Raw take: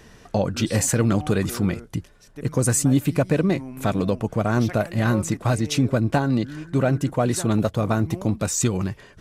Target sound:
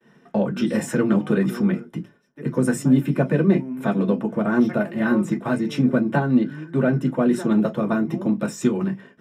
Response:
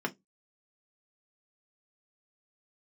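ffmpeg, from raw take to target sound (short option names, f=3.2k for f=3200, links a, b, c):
-filter_complex "[0:a]agate=range=-33dB:threshold=-42dB:ratio=3:detection=peak[a];[1:a]atrim=start_sample=2205[b];[a][b]afir=irnorm=-1:irlink=0,volume=-7dB"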